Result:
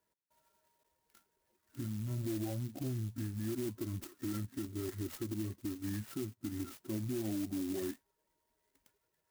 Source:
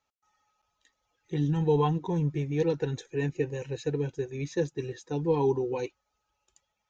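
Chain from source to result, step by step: compressor 6:1, threshold -34 dBFS, peak gain reduction 13.5 dB; speed mistake 45 rpm record played at 33 rpm; LPF 3000 Hz 12 dB/oct; bell 700 Hz -14.5 dB 0.43 oct; limiter -33 dBFS, peak gain reduction 7.5 dB; notch comb 1200 Hz; clock jitter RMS 0.11 ms; gain +3.5 dB

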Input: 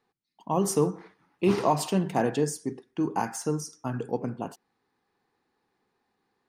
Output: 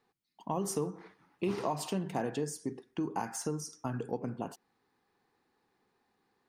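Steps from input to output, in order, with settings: compressor 2.5:1, threshold -34 dBFS, peak gain reduction 11 dB

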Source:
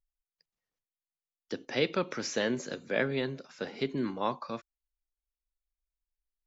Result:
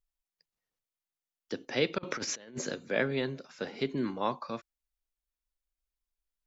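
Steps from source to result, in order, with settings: 1.98–2.73 negative-ratio compressor -38 dBFS, ratio -0.5

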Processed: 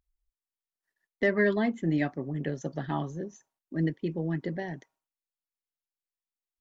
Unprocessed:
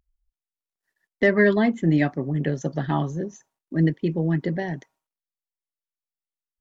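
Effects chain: bell 150 Hz -2.5 dB 0.77 oct; gain -6.5 dB

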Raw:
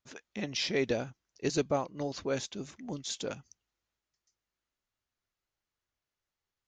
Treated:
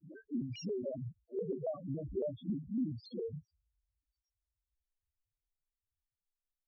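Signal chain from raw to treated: spectral dilation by 60 ms; Doppler pass-by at 2.2, 14 m/s, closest 7.4 m; tone controls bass +5 dB, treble -4 dB; notch 3400 Hz, Q 5.2; compressor 10:1, threshold -42 dBFS, peak gain reduction 18.5 dB; harmoniser -7 st -13 dB, +3 st -7 dB, +7 st -9 dB; loudest bins only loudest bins 2; downsampling 11025 Hz; shaped vibrato square 3.6 Hz, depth 160 cents; gain +13.5 dB

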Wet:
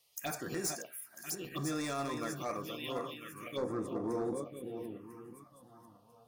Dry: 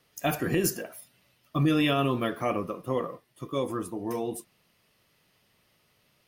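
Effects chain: regenerating reverse delay 0.498 s, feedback 56%, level -7 dB; tilt shelf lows -7 dB, about 1200 Hz, from 3.56 s lows +3 dB; hard clip -23 dBFS, distortion -12 dB; low shelf 110 Hz -6 dB; de-hum 134.1 Hz, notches 28; envelope phaser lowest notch 260 Hz, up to 3000 Hz, full sweep at -27.5 dBFS; gain -5 dB

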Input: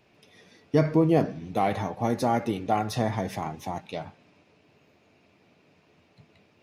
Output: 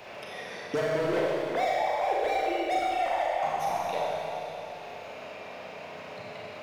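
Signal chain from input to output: 1.06–3.43 sine-wave speech; resonant low shelf 400 Hz -10.5 dB, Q 1.5; hard clip -26.5 dBFS, distortion -5 dB; Schroeder reverb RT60 1.9 s, combs from 29 ms, DRR -5 dB; three-band squash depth 70%; gain -2.5 dB

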